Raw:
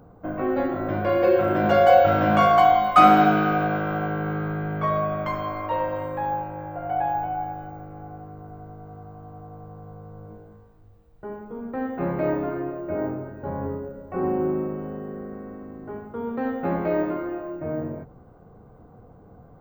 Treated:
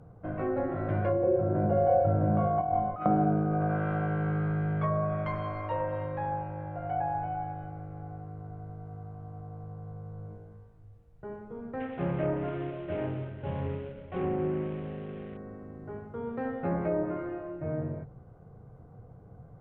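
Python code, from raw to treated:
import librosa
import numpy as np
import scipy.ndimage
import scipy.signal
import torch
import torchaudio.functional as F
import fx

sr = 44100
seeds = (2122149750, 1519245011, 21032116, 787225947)

y = fx.over_compress(x, sr, threshold_db=-18.0, ratio=-0.5, at=(2.61, 3.06))
y = fx.cvsd(y, sr, bps=16000, at=(11.8, 15.37))
y = fx.env_lowpass_down(y, sr, base_hz=600.0, full_db=-17.0)
y = fx.graphic_eq_10(y, sr, hz=(125, 250, 1000, 4000, 16000), db=(8, -6, -4, -4, -5))
y = F.gain(torch.from_numpy(y), -3.5).numpy()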